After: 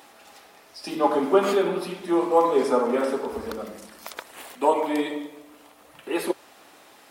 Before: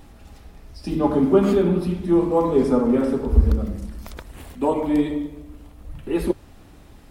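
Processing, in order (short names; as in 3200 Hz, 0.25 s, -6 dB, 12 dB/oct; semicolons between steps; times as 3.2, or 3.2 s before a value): HPF 590 Hz 12 dB/oct; gain +5 dB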